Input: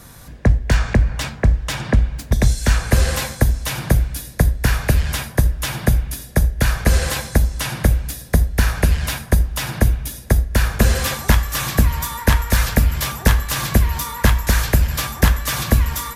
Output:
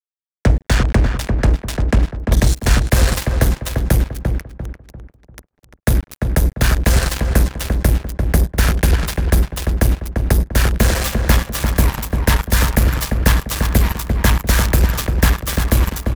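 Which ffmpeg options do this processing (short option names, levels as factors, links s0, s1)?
-filter_complex "[0:a]asettb=1/sr,asplit=3[s0][s1][s2];[s0]atrim=end=4.334[s3];[s1]atrim=start=4.33:end=5.85,asetpts=PTS-STARTPTS,afade=t=in:d=0.004:c=qsin,afade=t=out:st=1.516:d=0.004:c=qsin,acompressor=threshold=0.0355:ratio=5[s4];[s2]atrim=start=5.846[s5];[s3][s4]acrossfade=d=0.004:c1=hsin:c2=qsin[s6];[s6][s5]acrossfade=d=0.004:c1=qsin:c2=hsin,acrusher=bits=2:mix=0:aa=0.5,asplit=2[s7][s8];[s8]adelay=345,lowpass=f=1600:p=1,volume=0.596,asplit=2[s9][s10];[s10]adelay=345,lowpass=f=1600:p=1,volume=0.38,asplit=2[s11][s12];[s12]adelay=345,lowpass=f=1600:p=1,volume=0.38,asplit=2[s13][s14];[s14]adelay=345,lowpass=f=1600:p=1,volume=0.38,asplit=2[s15][s16];[s16]adelay=345,lowpass=f=1600:p=1,volume=0.38[s17];[s7][s9][s11][s13][s15][s17]amix=inputs=6:normalize=0"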